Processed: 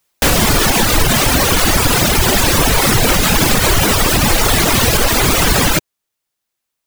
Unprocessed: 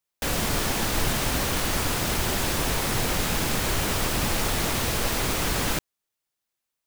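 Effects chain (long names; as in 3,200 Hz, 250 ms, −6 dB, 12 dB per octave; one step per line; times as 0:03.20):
reverb reduction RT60 1.7 s
boost into a limiter +19 dB
level −1 dB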